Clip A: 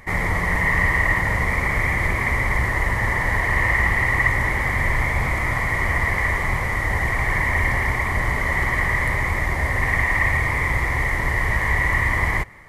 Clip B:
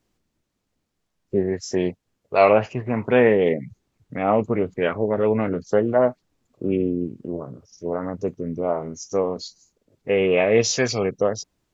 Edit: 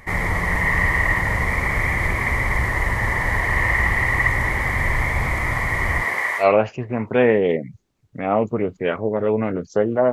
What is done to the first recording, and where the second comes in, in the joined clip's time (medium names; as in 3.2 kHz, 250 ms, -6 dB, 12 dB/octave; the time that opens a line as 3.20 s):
clip A
6.01–6.47 s: high-pass 220 Hz -> 950 Hz
6.42 s: go over to clip B from 2.39 s, crossfade 0.10 s